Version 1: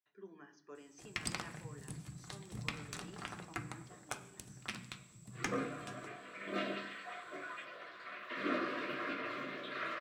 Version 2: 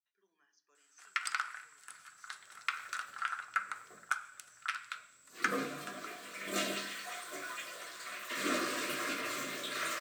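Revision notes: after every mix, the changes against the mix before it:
speech: add first difference
first sound: add high-pass with resonance 1,400 Hz, resonance Q 6.8
second sound: remove high-frequency loss of the air 370 metres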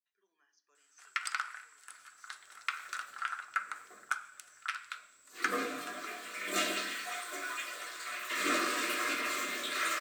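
second sound: send +10.5 dB
master: add parametric band 150 Hz −15 dB 0.97 octaves

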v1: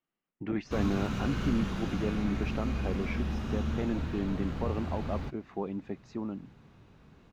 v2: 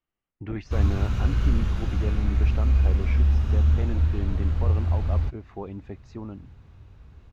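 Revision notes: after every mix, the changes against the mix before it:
master: add low shelf with overshoot 120 Hz +12.5 dB, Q 1.5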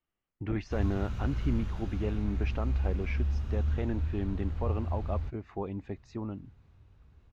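background −10.0 dB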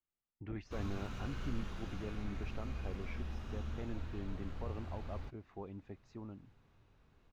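speech −11.0 dB
background: add parametric band 68 Hz −14.5 dB 1.9 octaves

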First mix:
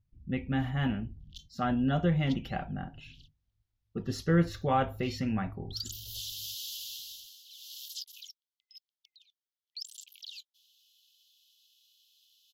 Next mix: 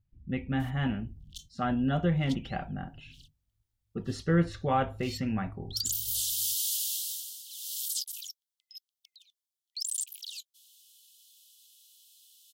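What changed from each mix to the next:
speech: add low-pass filter 3,400 Hz 12 dB per octave
master: remove moving average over 5 samples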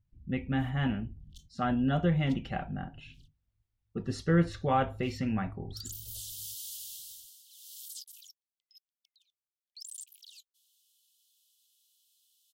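background −11.5 dB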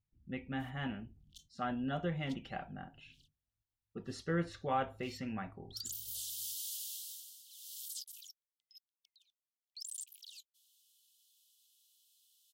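speech −5.5 dB
master: add low-shelf EQ 190 Hz −10 dB

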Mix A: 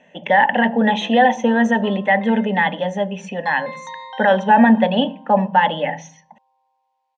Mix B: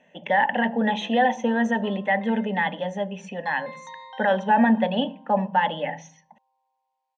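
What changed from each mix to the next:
speech −6.5 dB
background −7.5 dB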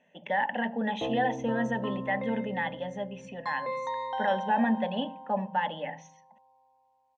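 speech −7.5 dB
background: remove resonant band-pass 3,200 Hz, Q 0.74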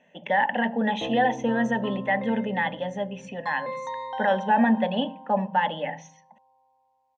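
speech +5.5 dB

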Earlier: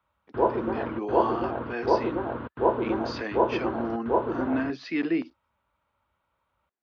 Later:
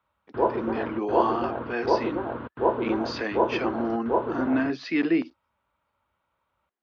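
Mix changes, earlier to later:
speech +3.5 dB
master: add low-shelf EQ 72 Hz −5.5 dB

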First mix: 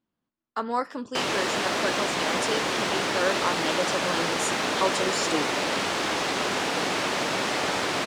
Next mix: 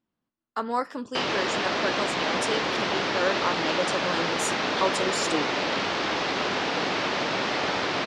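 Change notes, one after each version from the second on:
background: add low-pass filter 5,400 Hz 24 dB per octave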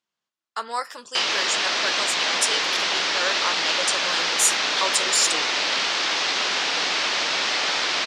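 speech: add parametric band 270 Hz −13 dB 0.33 octaves
master: add spectral tilt +4.5 dB per octave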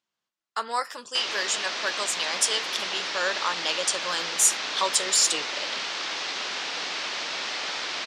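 background −6.0 dB
reverb: off

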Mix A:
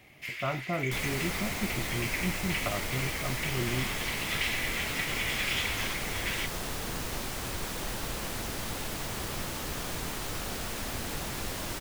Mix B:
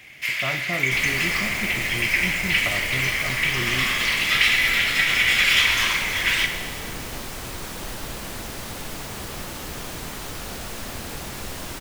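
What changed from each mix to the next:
first sound +10.5 dB
reverb: on, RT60 1.9 s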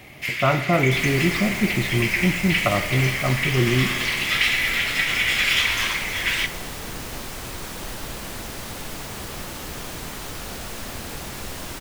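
speech +11.0 dB
first sound: send −10.0 dB

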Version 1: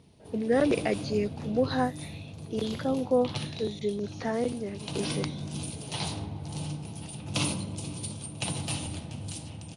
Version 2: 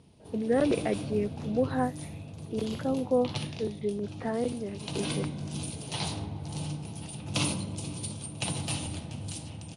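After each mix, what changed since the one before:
speech: add high-frequency loss of the air 470 metres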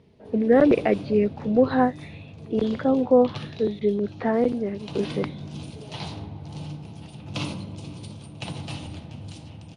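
speech +8.5 dB
background: add high-frequency loss of the air 110 metres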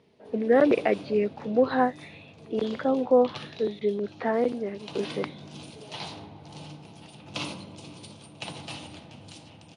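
master: add high-pass filter 410 Hz 6 dB per octave

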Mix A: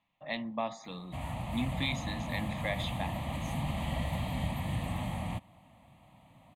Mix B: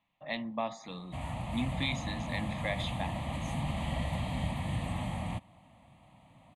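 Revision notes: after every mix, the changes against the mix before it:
background: add Butterworth low-pass 11,000 Hz 36 dB per octave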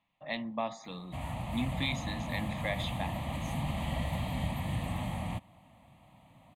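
background: remove Butterworth low-pass 11,000 Hz 36 dB per octave

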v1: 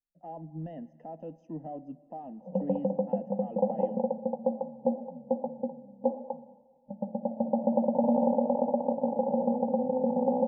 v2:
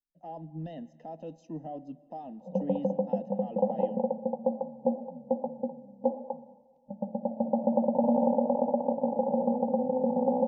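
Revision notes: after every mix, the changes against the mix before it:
master: remove moving average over 11 samples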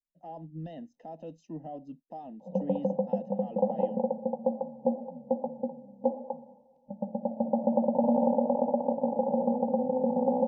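speech: send off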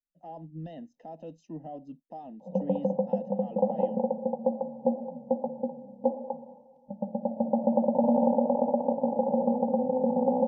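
background: send +6.0 dB

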